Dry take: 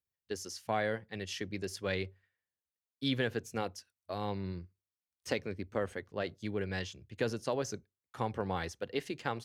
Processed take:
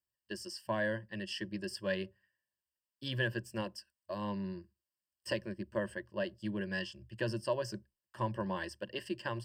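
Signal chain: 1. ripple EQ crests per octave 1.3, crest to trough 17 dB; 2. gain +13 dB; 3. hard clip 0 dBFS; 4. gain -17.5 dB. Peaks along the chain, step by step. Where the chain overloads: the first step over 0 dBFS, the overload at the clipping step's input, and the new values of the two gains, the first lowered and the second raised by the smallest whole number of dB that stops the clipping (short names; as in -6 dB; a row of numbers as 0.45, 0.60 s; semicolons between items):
-15.5, -2.5, -2.5, -20.0 dBFS; no overload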